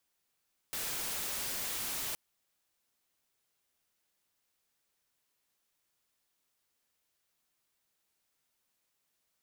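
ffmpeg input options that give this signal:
-f lavfi -i "anoisesrc=c=white:a=0.0245:d=1.42:r=44100:seed=1"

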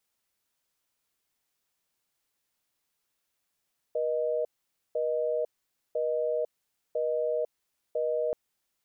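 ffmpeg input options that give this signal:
-f lavfi -i "aevalsrc='0.0376*(sin(2*PI*480*t)+sin(2*PI*620*t))*clip(min(mod(t,1),0.5-mod(t,1))/0.005,0,1)':d=4.38:s=44100"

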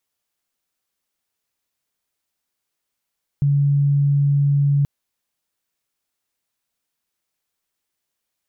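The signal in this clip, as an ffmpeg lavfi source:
-f lavfi -i "aevalsrc='0.211*sin(2*PI*142*t)':d=1.43:s=44100"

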